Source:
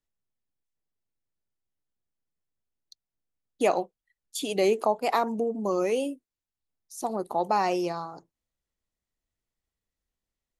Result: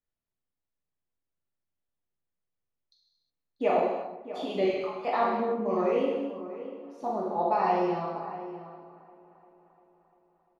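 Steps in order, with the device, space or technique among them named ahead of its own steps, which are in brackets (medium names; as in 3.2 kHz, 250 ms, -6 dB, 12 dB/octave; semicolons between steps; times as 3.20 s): 4.65–5.05 s: high-pass 1.3 kHz 24 dB/octave; shout across a valley (distance through air 310 m; echo from a far wall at 110 m, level -13 dB); feedback echo behind a low-pass 347 ms, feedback 63%, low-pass 2 kHz, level -19.5 dB; gated-style reverb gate 390 ms falling, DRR -5.5 dB; trim -5.5 dB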